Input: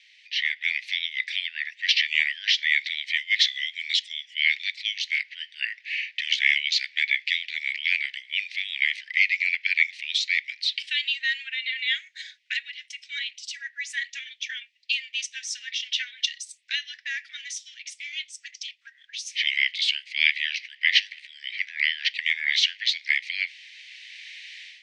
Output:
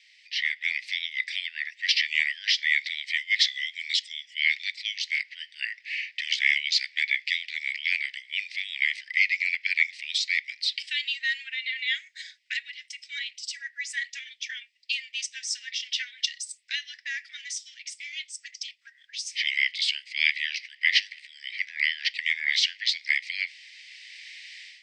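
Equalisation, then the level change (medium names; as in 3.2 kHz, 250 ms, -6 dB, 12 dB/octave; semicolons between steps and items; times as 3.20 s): graphic EQ with 31 bands 2 kHz +4 dB, 5 kHz +9 dB, 8 kHz +10 dB; -4.5 dB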